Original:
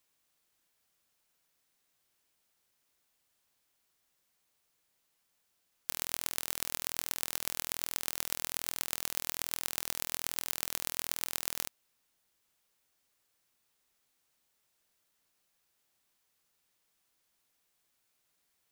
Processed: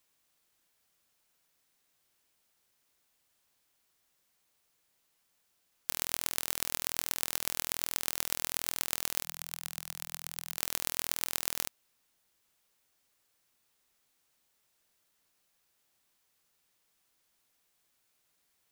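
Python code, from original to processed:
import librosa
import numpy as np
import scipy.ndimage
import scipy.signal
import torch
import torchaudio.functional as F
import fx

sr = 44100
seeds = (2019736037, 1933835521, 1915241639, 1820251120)

y = fx.curve_eq(x, sr, hz=(160.0, 350.0, 730.0), db=(0, -19, -7), at=(9.24, 10.57))
y = F.gain(torch.from_numpy(y), 2.0).numpy()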